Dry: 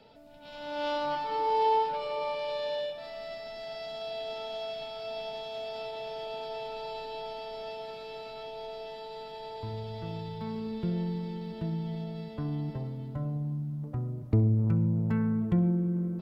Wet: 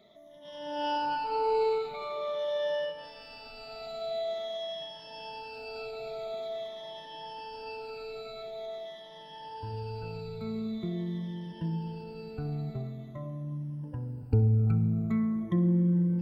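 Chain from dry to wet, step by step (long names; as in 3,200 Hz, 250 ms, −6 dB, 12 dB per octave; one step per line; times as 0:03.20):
rippled gain that drifts along the octave scale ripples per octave 1.2, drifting −0.46 Hz, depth 23 dB
on a send: convolution reverb RT60 5.3 s, pre-delay 36 ms, DRR 12.5 dB
on the sum: level −6.5 dB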